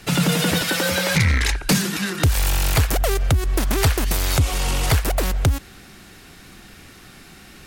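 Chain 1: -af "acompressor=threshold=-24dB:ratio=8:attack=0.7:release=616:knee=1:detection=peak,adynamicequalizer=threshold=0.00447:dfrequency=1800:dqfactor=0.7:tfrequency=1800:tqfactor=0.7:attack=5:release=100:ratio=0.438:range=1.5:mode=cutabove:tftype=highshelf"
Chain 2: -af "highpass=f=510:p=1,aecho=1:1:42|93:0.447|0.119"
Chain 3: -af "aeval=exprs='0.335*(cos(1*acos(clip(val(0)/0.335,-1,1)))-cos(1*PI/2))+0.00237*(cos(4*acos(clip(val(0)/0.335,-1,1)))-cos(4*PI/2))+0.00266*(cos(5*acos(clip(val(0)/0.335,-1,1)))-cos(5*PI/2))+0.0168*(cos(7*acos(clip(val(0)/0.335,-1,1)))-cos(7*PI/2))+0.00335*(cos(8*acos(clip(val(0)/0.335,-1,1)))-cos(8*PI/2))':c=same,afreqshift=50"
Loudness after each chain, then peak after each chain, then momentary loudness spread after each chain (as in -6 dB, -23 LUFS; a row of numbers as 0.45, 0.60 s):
-31.5, -22.5, -19.5 LUFS; -20.0, -6.5, -4.0 dBFS; 14, 7, 3 LU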